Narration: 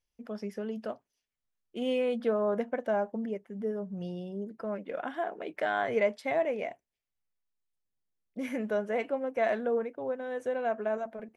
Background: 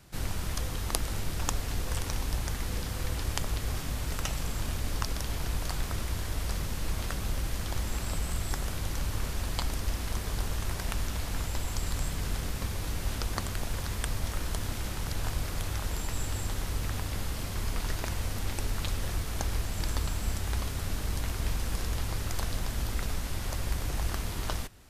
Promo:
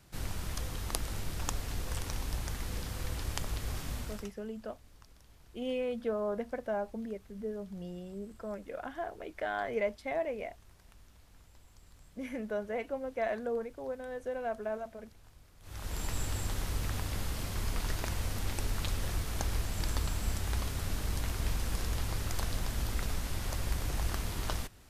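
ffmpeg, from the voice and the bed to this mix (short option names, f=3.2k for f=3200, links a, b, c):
-filter_complex "[0:a]adelay=3800,volume=-5dB[a];[1:a]volume=20dB,afade=t=out:st=3.95:d=0.37:silence=0.0794328,afade=t=in:st=15.61:d=0.44:silence=0.0595662[b];[a][b]amix=inputs=2:normalize=0"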